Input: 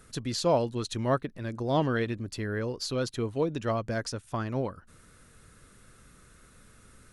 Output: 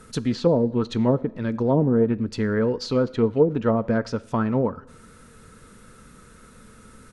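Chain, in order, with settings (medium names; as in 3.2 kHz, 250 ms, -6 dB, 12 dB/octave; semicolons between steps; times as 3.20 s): low-pass that closes with the level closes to 450 Hz, closed at -22 dBFS; small resonant body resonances 220/460/920/1300 Hz, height 8 dB, ringing for 35 ms; speakerphone echo 100 ms, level -28 dB; on a send at -17.5 dB: reverberation RT60 0.75 s, pre-delay 6 ms; on the sum: loudspeaker Doppler distortion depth 0.11 ms; trim +5 dB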